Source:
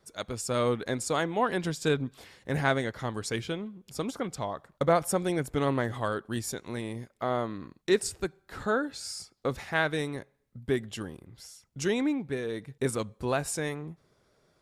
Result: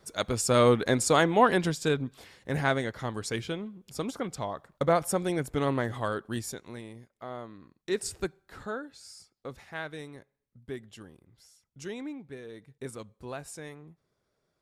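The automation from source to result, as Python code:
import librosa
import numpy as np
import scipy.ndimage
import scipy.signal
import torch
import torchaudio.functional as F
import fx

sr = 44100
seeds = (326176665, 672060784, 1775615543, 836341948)

y = fx.gain(x, sr, db=fx.line((1.48, 6.0), (1.89, -0.5), (6.34, -0.5), (7.02, -10.5), (7.76, -10.5), (8.17, 1.0), (8.87, -10.5)))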